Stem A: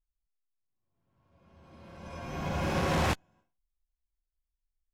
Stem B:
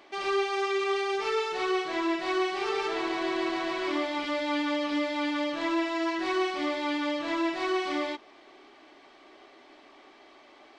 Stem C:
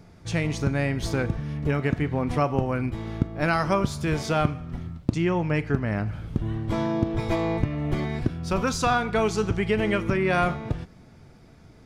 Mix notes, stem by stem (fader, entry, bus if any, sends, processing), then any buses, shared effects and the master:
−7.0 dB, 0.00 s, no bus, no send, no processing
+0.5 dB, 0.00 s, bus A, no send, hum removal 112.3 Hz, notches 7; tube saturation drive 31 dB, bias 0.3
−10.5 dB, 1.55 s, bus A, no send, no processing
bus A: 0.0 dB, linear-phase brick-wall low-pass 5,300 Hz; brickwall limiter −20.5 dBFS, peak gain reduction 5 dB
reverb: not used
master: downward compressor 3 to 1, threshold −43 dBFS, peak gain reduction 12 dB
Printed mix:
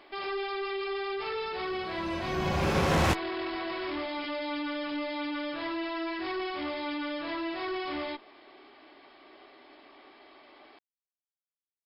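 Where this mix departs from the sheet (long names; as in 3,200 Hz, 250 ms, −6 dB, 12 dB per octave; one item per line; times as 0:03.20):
stem A −7.0 dB → +2.5 dB
stem C: muted
master: missing downward compressor 3 to 1, threshold −43 dBFS, peak gain reduction 12 dB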